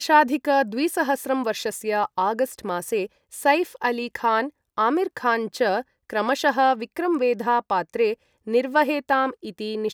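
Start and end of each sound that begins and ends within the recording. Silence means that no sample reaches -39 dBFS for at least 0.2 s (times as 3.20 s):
3.33–4.49 s
4.77–5.82 s
6.10–8.14 s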